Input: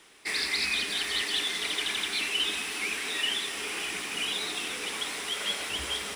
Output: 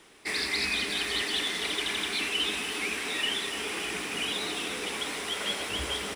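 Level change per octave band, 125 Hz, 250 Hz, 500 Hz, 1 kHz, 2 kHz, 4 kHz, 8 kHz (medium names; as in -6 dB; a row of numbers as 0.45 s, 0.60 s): +5.5 dB, +5.0 dB, +4.5 dB, +2.0 dB, 0.0 dB, -1.0 dB, -1.5 dB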